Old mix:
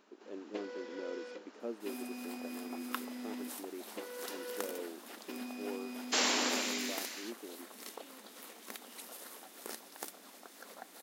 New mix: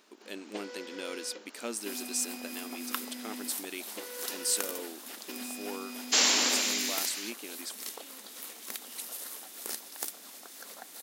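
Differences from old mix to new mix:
speech: remove resonant band-pass 410 Hz, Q 1.2
master: add high-shelf EQ 2,600 Hz +10.5 dB

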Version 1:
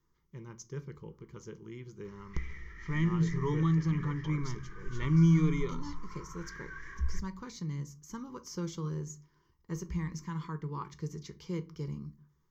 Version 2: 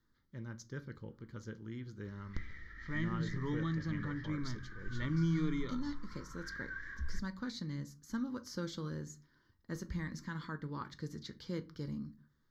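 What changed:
background −3.5 dB
master: remove EQ curve with evenly spaced ripples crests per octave 0.75, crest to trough 13 dB

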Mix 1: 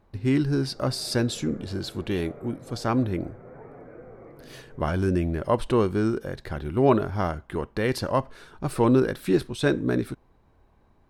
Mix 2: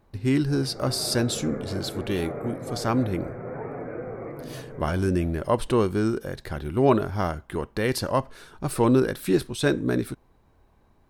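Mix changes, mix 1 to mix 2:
background +10.5 dB
master: add high-shelf EQ 6,200 Hz +8.5 dB

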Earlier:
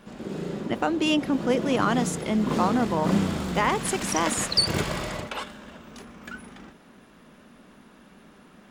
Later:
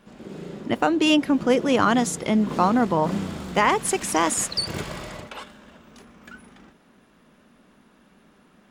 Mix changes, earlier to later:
speech +4.5 dB
background −4.5 dB

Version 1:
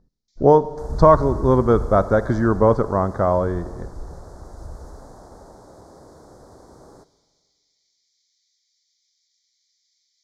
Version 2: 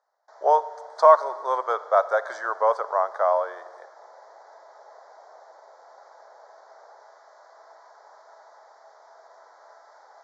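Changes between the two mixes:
first sound: remove Butterworth high-pass 2,400 Hz 72 dB per octave
second sound: add Gaussian smoothing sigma 9.5 samples
master: add Butterworth high-pass 590 Hz 36 dB per octave

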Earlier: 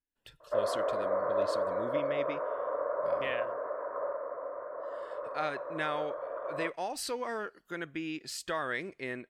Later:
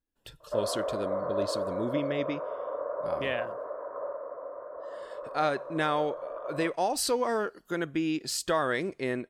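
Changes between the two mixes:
speech +9.0 dB
master: add parametric band 2,100 Hz −7.5 dB 1.4 octaves

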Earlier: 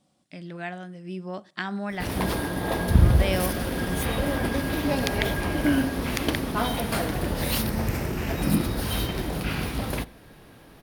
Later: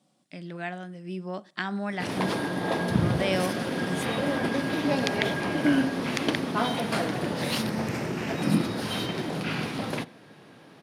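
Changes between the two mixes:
background: add low-pass filter 7,400 Hz 12 dB per octave
master: add high-pass filter 130 Hz 24 dB per octave

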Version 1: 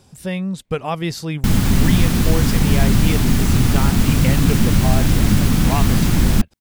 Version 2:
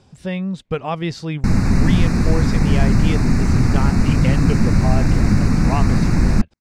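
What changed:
background: add Butterworth band-reject 3,200 Hz, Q 1.9
master: add high-frequency loss of the air 93 metres

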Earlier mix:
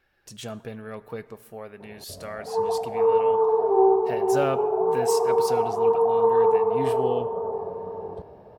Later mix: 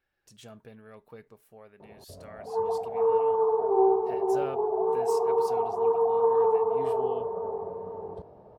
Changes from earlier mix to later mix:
speech −8.0 dB
reverb: off

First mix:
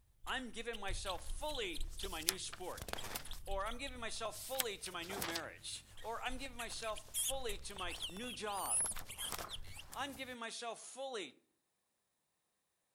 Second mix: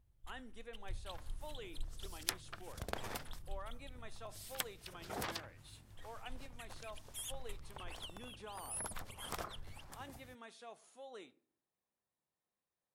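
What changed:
speech −6.5 dB
second sound +4.5 dB
master: add high-shelf EQ 2,200 Hz −8.5 dB

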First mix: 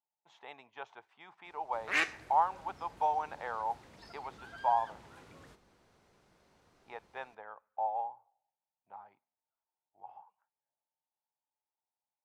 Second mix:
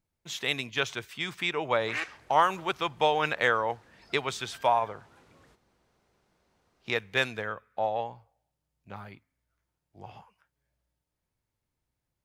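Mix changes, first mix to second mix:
speech: remove resonant band-pass 840 Hz, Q 6.2
reverb: off

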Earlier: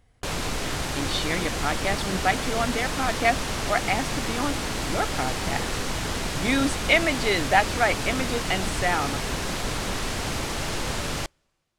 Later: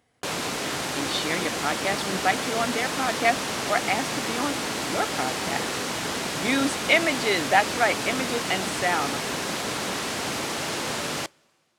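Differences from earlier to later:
background: send +10.0 dB
master: add high-pass filter 190 Hz 12 dB per octave

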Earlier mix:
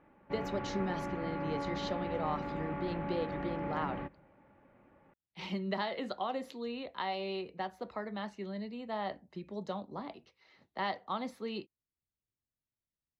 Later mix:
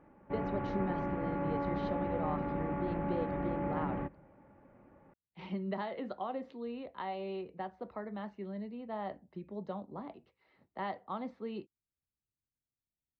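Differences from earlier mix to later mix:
background +4.5 dB
master: add head-to-tape spacing loss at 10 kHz 34 dB

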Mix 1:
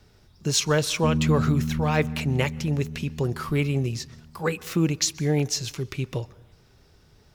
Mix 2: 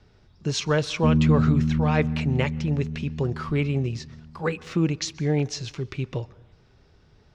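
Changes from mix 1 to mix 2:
background +4.5 dB
master: add high-frequency loss of the air 120 metres

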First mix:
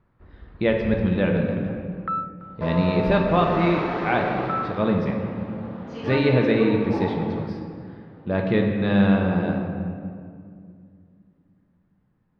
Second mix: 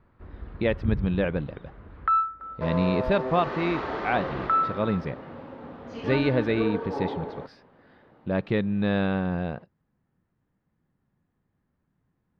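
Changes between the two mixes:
first sound +5.0 dB
reverb: off

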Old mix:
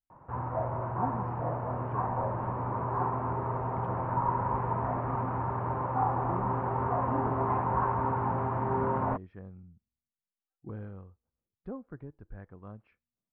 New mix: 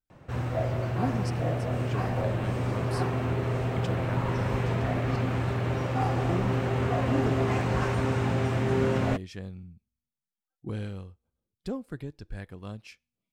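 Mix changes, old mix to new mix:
background: add parametric band 950 Hz −15 dB 0.46 octaves
master: remove transistor ladder low-pass 1,600 Hz, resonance 30%

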